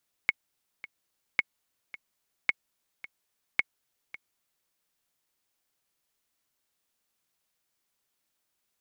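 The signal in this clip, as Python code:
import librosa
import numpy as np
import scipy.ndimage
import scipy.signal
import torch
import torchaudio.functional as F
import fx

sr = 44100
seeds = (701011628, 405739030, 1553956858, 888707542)

y = fx.click_track(sr, bpm=109, beats=2, bars=4, hz=2190.0, accent_db=18.0, level_db=-9.5)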